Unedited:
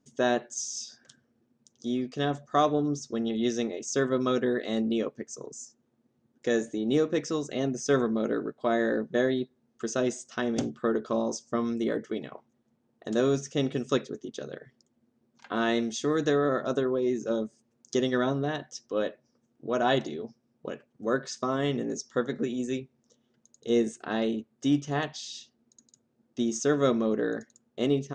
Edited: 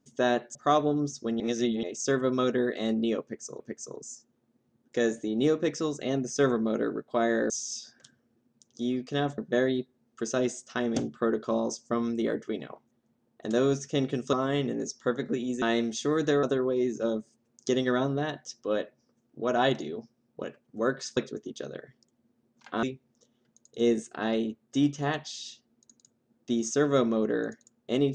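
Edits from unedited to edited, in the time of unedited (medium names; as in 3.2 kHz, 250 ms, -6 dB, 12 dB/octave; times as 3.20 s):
0.55–2.43 s: move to 9.00 s
3.28–3.71 s: reverse
5.10–5.48 s: loop, 2 plays
13.95–15.61 s: swap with 21.43–22.72 s
16.42–16.69 s: delete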